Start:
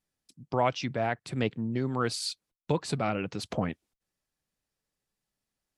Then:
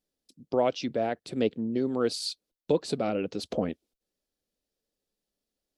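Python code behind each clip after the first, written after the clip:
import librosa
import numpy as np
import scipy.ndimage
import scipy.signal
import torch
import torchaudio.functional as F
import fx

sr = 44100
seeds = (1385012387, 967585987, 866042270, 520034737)

y = fx.graphic_eq_10(x, sr, hz=(125, 250, 500, 1000, 2000, 4000, 8000), db=(-10, 4, 7, -7, -6, 3, -3))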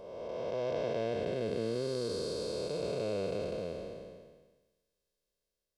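y = fx.spec_blur(x, sr, span_ms=861.0)
y = y + 0.69 * np.pad(y, (int(1.9 * sr / 1000.0), 0))[:len(y)]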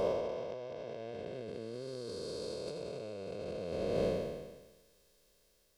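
y = fx.over_compress(x, sr, threshold_db=-47.0, ratio=-1.0)
y = y * 10.0 ** (7.0 / 20.0)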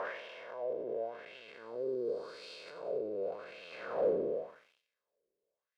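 y = fx.leveller(x, sr, passes=3)
y = fx.wah_lfo(y, sr, hz=0.89, low_hz=360.0, high_hz=2800.0, q=3.2)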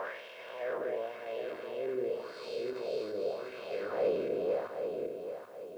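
y = fx.reverse_delay_fb(x, sr, ms=390, feedback_pct=60, wet_db=-2)
y = fx.quant_dither(y, sr, seeds[0], bits=12, dither='triangular')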